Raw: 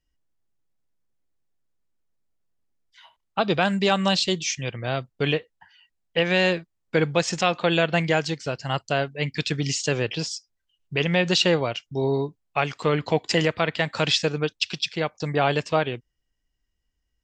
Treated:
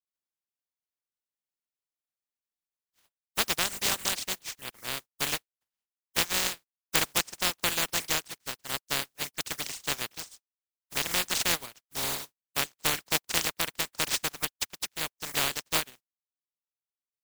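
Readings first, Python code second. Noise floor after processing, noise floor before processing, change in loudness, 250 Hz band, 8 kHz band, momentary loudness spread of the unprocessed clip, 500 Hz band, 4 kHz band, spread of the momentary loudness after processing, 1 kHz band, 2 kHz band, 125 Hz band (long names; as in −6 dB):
below −85 dBFS, −77 dBFS, −5.5 dB, −16.5 dB, +4.0 dB, 8 LU, −17.0 dB, −3.5 dB, 9 LU, −9.0 dB, −6.0 dB, −18.0 dB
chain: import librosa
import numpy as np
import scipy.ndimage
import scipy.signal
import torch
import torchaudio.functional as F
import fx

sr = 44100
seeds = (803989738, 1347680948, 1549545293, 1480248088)

y = fx.spec_flatten(x, sr, power=0.11)
y = fx.dereverb_blind(y, sr, rt60_s=1.1)
y = fx.power_curve(y, sr, exponent=1.4)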